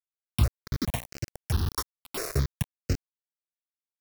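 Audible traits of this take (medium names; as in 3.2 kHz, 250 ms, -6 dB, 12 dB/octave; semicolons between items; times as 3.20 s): a buzz of ramps at a fixed pitch in blocks of 8 samples; random-step tremolo 4.2 Hz, depth 90%; a quantiser's noise floor 6-bit, dither none; notches that jump at a steady rate 4.6 Hz 690–3500 Hz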